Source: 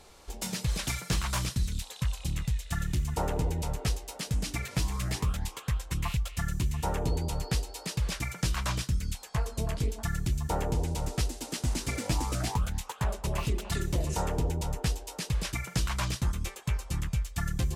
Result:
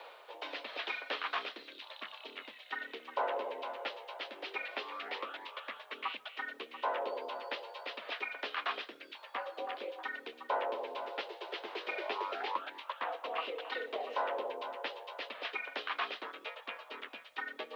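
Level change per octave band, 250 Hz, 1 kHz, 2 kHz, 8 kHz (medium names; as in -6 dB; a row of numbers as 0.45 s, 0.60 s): -18.0 dB, +0.5 dB, +0.5 dB, under -30 dB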